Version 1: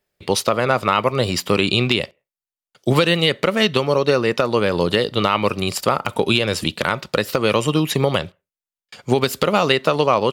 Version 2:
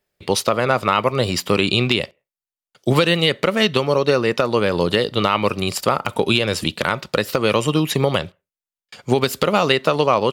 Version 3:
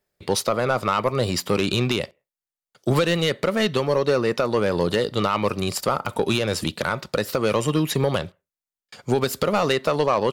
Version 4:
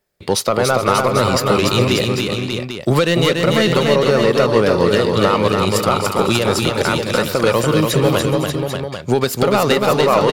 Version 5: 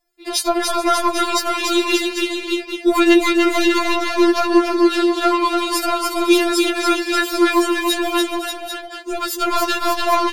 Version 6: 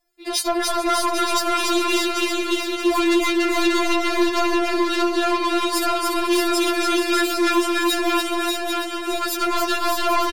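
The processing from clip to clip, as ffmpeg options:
ffmpeg -i in.wav -af anull out.wav
ffmpeg -i in.wav -af "acontrast=82,equalizer=frequency=2800:width_type=o:width=0.79:gain=-4.5,volume=-8.5dB" out.wav
ffmpeg -i in.wav -af "aecho=1:1:288|424|511|588|794:0.631|0.141|0.119|0.473|0.335,volume=5dB" out.wav
ffmpeg -i in.wav -af "afftfilt=real='re*4*eq(mod(b,16),0)':imag='im*4*eq(mod(b,16),0)':win_size=2048:overlap=0.75,volume=2.5dB" out.wav
ffmpeg -i in.wav -filter_complex "[0:a]asoftclip=type=tanh:threshold=-15.5dB,asplit=2[link_01][link_02];[link_02]aecho=0:1:627|1254|1881|2508|3135|3762:0.501|0.231|0.106|0.0488|0.0224|0.0103[link_03];[link_01][link_03]amix=inputs=2:normalize=0" out.wav

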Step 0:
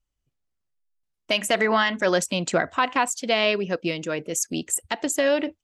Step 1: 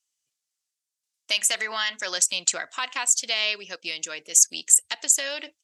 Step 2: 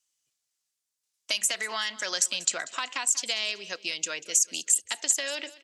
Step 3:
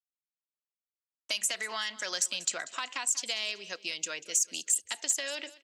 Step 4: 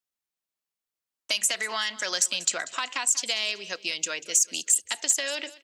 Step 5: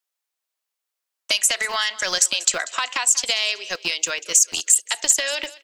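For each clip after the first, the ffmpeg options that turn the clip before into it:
ffmpeg -i in.wav -filter_complex "[0:a]asplit=2[link_01][link_02];[link_02]acompressor=threshold=-31dB:ratio=6,volume=2dB[link_03];[link_01][link_03]amix=inputs=2:normalize=0,bandpass=frequency=7000:width_type=q:width=1.2:csg=0,volume=7dB" out.wav
ffmpeg -i in.wav -filter_complex "[0:a]acrossover=split=330|5400[link_01][link_02][link_03];[link_01]acompressor=threshold=-52dB:ratio=4[link_04];[link_02]acompressor=threshold=-31dB:ratio=4[link_05];[link_03]acompressor=threshold=-27dB:ratio=4[link_06];[link_04][link_05][link_06]amix=inputs=3:normalize=0,aecho=1:1:190|380|570:0.119|0.0416|0.0146,volume=2dB" out.wav
ffmpeg -i in.wav -af "agate=range=-33dB:threshold=-45dB:ratio=3:detection=peak,asoftclip=type=tanh:threshold=-10.5dB,volume=-3.5dB" out.wav
ffmpeg -i in.wav -af "bandreject=frequency=50:width_type=h:width=6,bandreject=frequency=100:width_type=h:width=6,bandreject=frequency=150:width_type=h:width=6,volume=5.5dB" out.wav
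ffmpeg -i in.wav -filter_complex "[0:a]equalizer=frequency=140:width_type=o:width=1.2:gain=3,acrossover=split=380|2900[link_01][link_02][link_03];[link_01]acrusher=bits=6:mix=0:aa=0.000001[link_04];[link_04][link_02][link_03]amix=inputs=3:normalize=0,volume=6dB" out.wav

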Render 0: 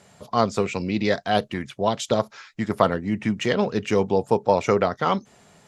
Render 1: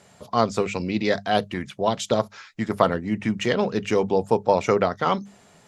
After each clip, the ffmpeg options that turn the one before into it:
ffmpeg -i in.wav -af "bandreject=frequency=50:width_type=h:width=6,bandreject=frequency=100:width_type=h:width=6,bandreject=frequency=150:width_type=h:width=6,bandreject=frequency=200:width_type=h:width=6" out.wav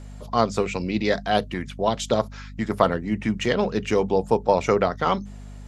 ffmpeg -i in.wav -af "aeval=exprs='val(0)+0.0126*(sin(2*PI*50*n/s)+sin(2*PI*2*50*n/s)/2+sin(2*PI*3*50*n/s)/3+sin(2*PI*4*50*n/s)/4+sin(2*PI*5*50*n/s)/5)':channel_layout=same" out.wav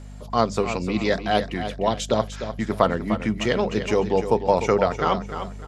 ffmpeg -i in.wav -af "aecho=1:1:301|602|903|1204:0.316|0.104|0.0344|0.0114" out.wav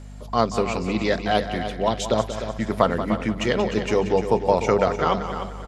ffmpeg -i in.wav -af "aecho=1:1:183|366|549|732:0.282|0.093|0.0307|0.0101" out.wav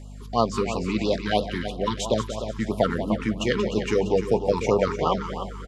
ffmpeg -i in.wav -af "afftfilt=real='re*(1-between(b*sr/1024,600*pow(1900/600,0.5+0.5*sin(2*PI*3*pts/sr))/1.41,600*pow(1900/600,0.5+0.5*sin(2*PI*3*pts/sr))*1.41))':imag='im*(1-between(b*sr/1024,600*pow(1900/600,0.5+0.5*sin(2*PI*3*pts/sr))/1.41,600*pow(1900/600,0.5+0.5*sin(2*PI*3*pts/sr))*1.41))':win_size=1024:overlap=0.75,volume=-1dB" out.wav

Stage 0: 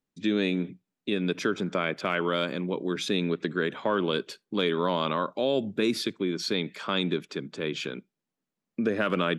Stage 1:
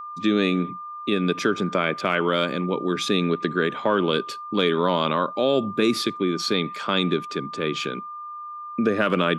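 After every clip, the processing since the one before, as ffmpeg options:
ffmpeg -i in.wav -af "aeval=exprs='val(0)+0.0126*sin(2*PI*1200*n/s)':channel_layout=same,volume=5dB" out.wav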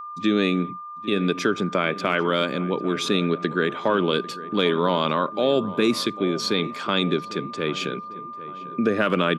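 ffmpeg -i in.wav -filter_complex "[0:a]asplit=2[link_01][link_02];[link_02]adelay=797,lowpass=frequency=1600:poles=1,volume=-15.5dB,asplit=2[link_03][link_04];[link_04]adelay=797,lowpass=frequency=1600:poles=1,volume=0.53,asplit=2[link_05][link_06];[link_06]adelay=797,lowpass=frequency=1600:poles=1,volume=0.53,asplit=2[link_07][link_08];[link_08]adelay=797,lowpass=frequency=1600:poles=1,volume=0.53,asplit=2[link_09][link_10];[link_10]adelay=797,lowpass=frequency=1600:poles=1,volume=0.53[link_11];[link_01][link_03][link_05][link_07][link_09][link_11]amix=inputs=6:normalize=0" out.wav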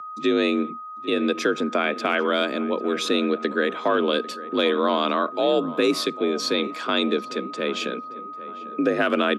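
ffmpeg -i in.wav -af "afreqshift=52" out.wav

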